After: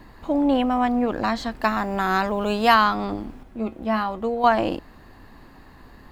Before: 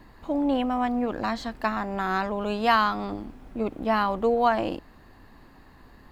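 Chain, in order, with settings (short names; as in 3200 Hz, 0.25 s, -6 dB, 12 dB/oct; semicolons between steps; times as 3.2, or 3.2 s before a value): 1.63–2.74 high shelf 6700 Hz +8.5 dB; 3.43–4.44 resonator 73 Hz, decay 0.16 s, harmonics odd, mix 70%; gain +4.5 dB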